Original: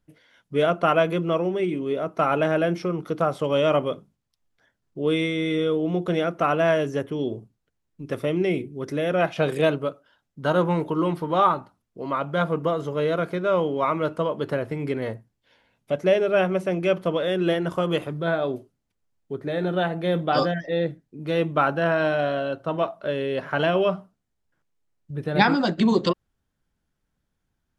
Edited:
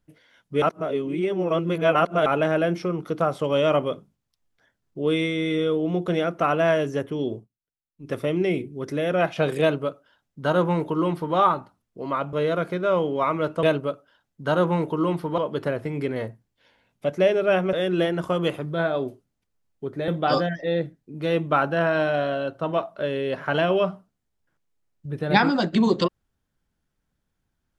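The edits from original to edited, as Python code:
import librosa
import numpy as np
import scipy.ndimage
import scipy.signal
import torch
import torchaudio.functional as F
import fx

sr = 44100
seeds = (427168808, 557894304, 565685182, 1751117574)

y = fx.edit(x, sr, fx.reverse_span(start_s=0.62, length_s=1.64),
    fx.fade_down_up(start_s=7.35, length_s=0.74, db=-20.5, fade_s=0.13),
    fx.duplicate(start_s=9.61, length_s=1.75, to_s=14.24),
    fx.cut(start_s=12.33, length_s=0.61),
    fx.cut(start_s=16.59, length_s=0.62),
    fx.cut(start_s=19.56, length_s=0.57), tone=tone)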